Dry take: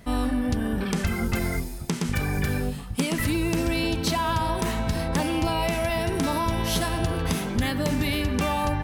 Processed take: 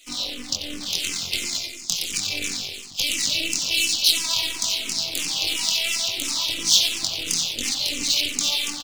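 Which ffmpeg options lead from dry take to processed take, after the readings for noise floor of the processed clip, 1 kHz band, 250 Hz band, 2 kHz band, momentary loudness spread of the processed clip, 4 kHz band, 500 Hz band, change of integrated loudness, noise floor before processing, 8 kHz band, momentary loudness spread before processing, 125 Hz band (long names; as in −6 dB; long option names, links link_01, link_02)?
−37 dBFS, −13.0 dB, −13.5 dB, +1.5 dB, 9 LU, +13.5 dB, −13.0 dB, +4.0 dB, −34 dBFS, +13.0 dB, 3 LU, −19.5 dB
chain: -filter_complex "[0:a]acrossover=split=300|940[link_01][link_02][link_03];[link_01]aeval=exprs='0.2*(cos(1*acos(clip(val(0)/0.2,-1,1)))-cos(1*PI/2))+0.0316*(cos(7*acos(clip(val(0)/0.2,-1,1)))-cos(7*PI/2))':channel_layout=same[link_04];[link_02]asoftclip=type=tanh:threshold=-35dB[link_05];[link_03]acontrast=74[link_06];[link_04][link_05][link_06]amix=inputs=3:normalize=0,flanger=delay=20:depth=4.8:speed=1.3,highpass=110,equalizer=frequency=290:width_type=o:width=0.43:gain=11,aresample=16000,aresample=44100,highshelf=frequency=2700:gain=-8,asplit=2[link_07][link_08];[link_08]adelay=91,lowpass=frequency=3600:poles=1,volume=-5dB,asplit=2[link_09][link_10];[link_10]adelay=91,lowpass=frequency=3600:poles=1,volume=0.52,asplit=2[link_11][link_12];[link_12]adelay=91,lowpass=frequency=3600:poles=1,volume=0.52,asplit=2[link_13][link_14];[link_14]adelay=91,lowpass=frequency=3600:poles=1,volume=0.52,asplit=2[link_15][link_16];[link_16]adelay=91,lowpass=frequency=3600:poles=1,volume=0.52,asplit=2[link_17][link_18];[link_18]adelay=91,lowpass=frequency=3600:poles=1,volume=0.52,asplit=2[link_19][link_20];[link_20]adelay=91,lowpass=frequency=3600:poles=1,volume=0.52[link_21];[link_07][link_09][link_11][link_13][link_15][link_17][link_19][link_21]amix=inputs=8:normalize=0,aeval=exprs='max(val(0),0)':channel_layout=same,aexciter=amount=13.4:drive=9.2:freq=2700,asplit=2[link_22][link_23];[link_23]afreqshift=-2.9[link_24];[link_22][link_24]amix=inputs=2:normalize=1,volume=-5.5dB"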